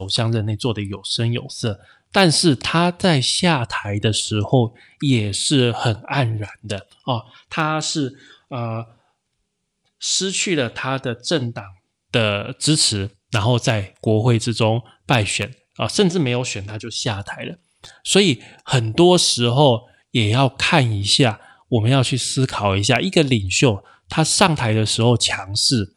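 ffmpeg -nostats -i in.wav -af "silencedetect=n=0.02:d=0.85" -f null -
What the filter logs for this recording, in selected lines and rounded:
silence_start: 8.84
silence_end: 10.02 | silence_duration: 1.18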